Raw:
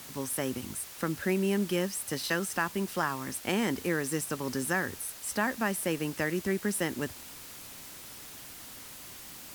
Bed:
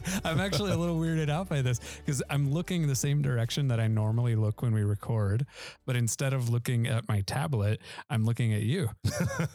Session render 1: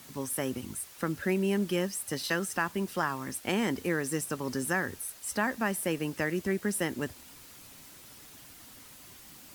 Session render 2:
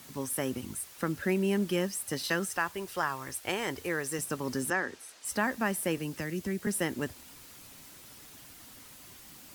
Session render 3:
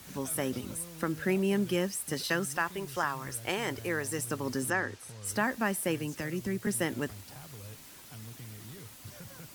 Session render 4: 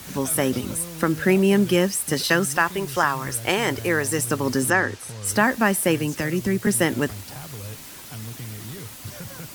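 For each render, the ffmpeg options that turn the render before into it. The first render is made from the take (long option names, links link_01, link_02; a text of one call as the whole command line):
ffmpeg -i in.wav -af "afftdn=noise_reduction=6:noise_floor=-47" out.wav
ffmpeg -i in.wav -filter_complex "[0:a]asettb=1/sr,asplit=3[link_01][link_02][link_03];[link_01]atrim=end=2.494[link_04];[link_02]atrim=start=2.49:end=4.19,asetpts=PTS-STARTPTS,afade=type=in:duration=0.004:curve=qsin,afade=type=out:start_time=1.696:duration=0.004:curve=qsin,equalizer=frequency=220:width_type=o:width=0.77:gain=-14[link_05];[link_03]atrim=start=4.186[link_06];[link_04][link_05]acrossfade=duration=0.004:curve1=hsin:curve2=qsin[link_07];[link_07][link_06]acrossfade=duration=0.004:curve1=qsin:curve2=hsin,asettb=1/sr,asplit=3[link_08][link_09][link_10];[link_08]atrim=end=4.704[link_11];[link_09]atrim=start=4.7:end=5.25,asetpts=PTS-STARTPTS,afade=type=in:duration=0.004:curve=qsin,afade=type=out:start_time=0.546:duration=0.004:curve=qsin,acrossover=split=230 7700:gain=0.141 1 0.1[link_12][link_13][link_14];[link_12][link_13][link_14]amix=inputs=3:normalize=0[link_15];[link_10]atrim=start=5.246[link_16];[link_11][link_15]acrossfade=duration=0.004:curve1=hsin:curve2=qsin[link_17];[link_17][link_16]acrossfade=duration=0.004:curve1=qsin:curve2=hsin,asettb=1/sr,asplit=3[link_18][link_19][link_20];[link_18]atrim=end=5.974[link_21];[link_19]atrim=start=5.97:end=6.67,asetpts=PTS-STARTPTS,afade=type=in:duration=0.004:curve=qsin,afade=type=out:start_time=0.696:duration=0.004:curve=qsin,acrossover=split=270|3000[link_22][link_23][link_24];[link_23]acompressor=threshold=-43dB:ratio=2:attack=3.2:release=140:knee=2.83:detection=peak[link_25];[link_22][link_25][link_24]amix=inputs=3:normalize=0[link_26];[link_20]atrim=start=6.666[link_27];[link_21][link_26]acrossfade=duration=0.004:curve1=hsin:curve2=qsin[link_28];[link_28][link_27]acrossfade=duration=0.004:curve1=qsin:curve2=hsin" out.wav
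ffmpeg -i in.wav -i bed.wav -filter_complex "[1:a]volume=-19.5dB[link_01];[0:a][link_01]amix=inputs=2:normalize=0" out.wav
ffmpeg -i in.wav -af "volume=10.5dB" out.wav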